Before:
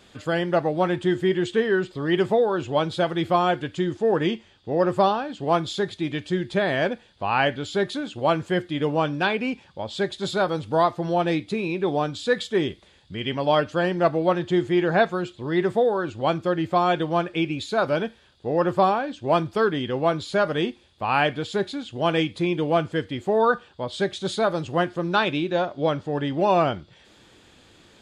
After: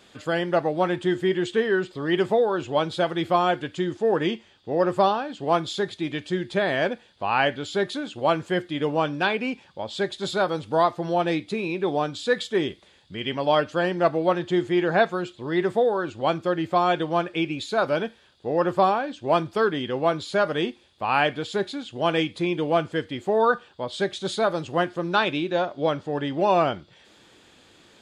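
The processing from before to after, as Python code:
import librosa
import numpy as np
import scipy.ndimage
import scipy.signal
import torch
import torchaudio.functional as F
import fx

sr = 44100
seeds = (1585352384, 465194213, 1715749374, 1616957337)

y = fx.low_shelf(x, sr, hz=120.0, db=-9.5)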